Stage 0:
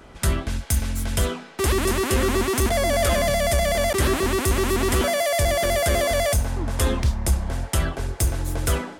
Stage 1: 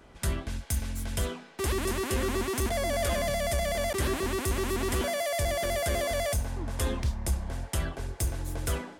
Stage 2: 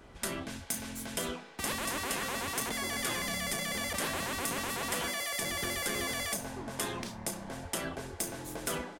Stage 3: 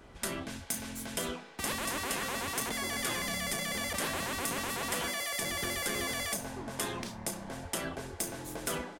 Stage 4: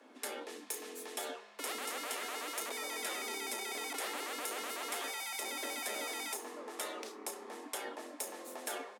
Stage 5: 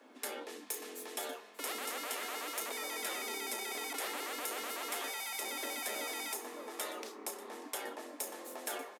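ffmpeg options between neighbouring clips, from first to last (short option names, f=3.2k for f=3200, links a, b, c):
-af "bandreject=f=1.3k:w=22,volume=-8dB"
-filter_complex "[0:a]asplit=2[a][b];[b]adelay=34,volume=-11dB[c];[a][c]amix=inputs=2:normalize=0,afftfilt=real='re*lt(hypot(re,im),0.126)':imag='im*lt(hypot(re,im),0.126)':win_size=1024:overlap=0.75"
-af anull
-af "afreqshift=210,volume=-5.5dB"
-af "aecho=1:1:589:0.141,aexciter=amount=1.5:drive=3.2:freq=12k"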